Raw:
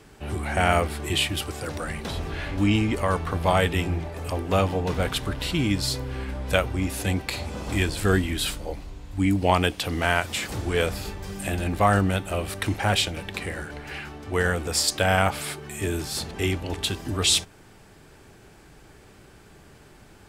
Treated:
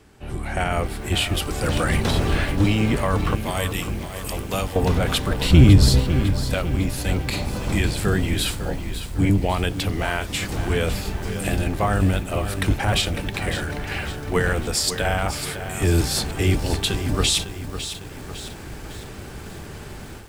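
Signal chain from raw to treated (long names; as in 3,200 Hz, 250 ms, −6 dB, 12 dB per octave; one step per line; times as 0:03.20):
sub-octave generator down 1 octave, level +1 dB
0:03.35–0:04.76: first-order pre-emphasis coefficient 0.8
automatic gain control gain up to 15 dB
brickwall limiter −7 dBFS, peak gain reduction 6 dB
0:05.50–0:06.00: low-shelf EQ 340 Hz +9.5 dB
feedback echo at a low word length 553 ms, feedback 55%, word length 6 bits, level −10 dB
level −3 dB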